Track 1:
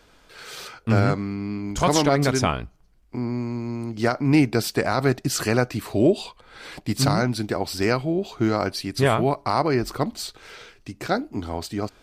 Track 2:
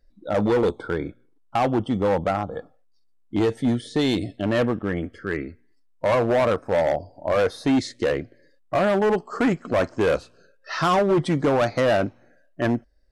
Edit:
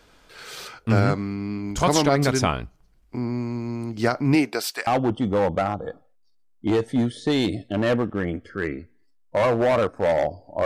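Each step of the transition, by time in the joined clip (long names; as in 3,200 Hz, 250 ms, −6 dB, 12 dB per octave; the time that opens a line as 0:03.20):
track 1
0:04.34–0:04.87: high-pass filter 230 Hz → 1,300 Hz
0:04.87: continue with track 2 from 0:01.56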